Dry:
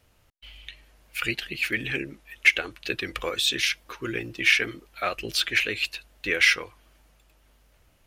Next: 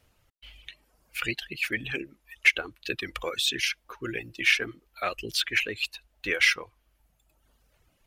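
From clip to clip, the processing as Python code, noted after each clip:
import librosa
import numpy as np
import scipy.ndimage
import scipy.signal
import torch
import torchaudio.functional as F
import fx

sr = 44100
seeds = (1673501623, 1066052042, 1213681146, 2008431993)

y = fx.dereverb_blind(x, sr, rt60_s=1.1)
y = y * librosa.db_to_amplitude(-2.0)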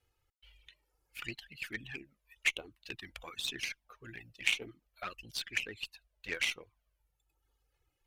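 y = fx.env_flanger(x, sr, rest_ms=2.4, full_db=-21.0)
y = fx.cheby_harmonics(y, sr, harmonics=(3, 6, 7, 8), levels_db=(-14, -34, -39, -32), full_scale_db=-10.0)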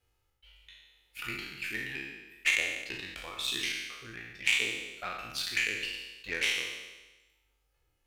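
y = fx.spec_trails(x, sr, decay_s=1.15)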